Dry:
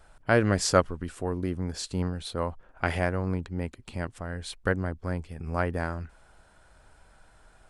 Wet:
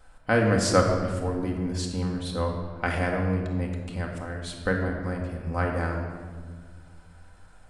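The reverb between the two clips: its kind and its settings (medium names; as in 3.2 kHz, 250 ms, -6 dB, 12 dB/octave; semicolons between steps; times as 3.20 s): simulated room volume 2100 m³, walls mixed, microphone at 2 m; trim -1.5 dB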